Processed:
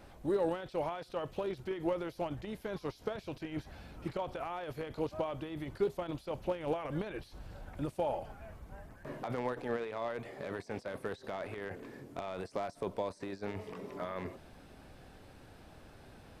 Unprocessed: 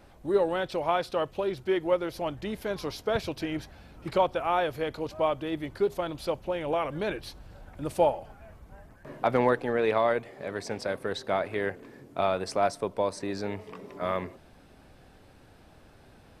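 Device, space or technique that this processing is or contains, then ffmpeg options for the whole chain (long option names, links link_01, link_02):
de-esser from a sidechain: -filter_complex "[0:a]asplit=2[link_01][link_02];[link_02]highpass=5000,apad=whole_len=723282[link_03];[link_01][link_03]sidechaincompress=threshold=-60dB:ratio=16:attack=1.3:release=24"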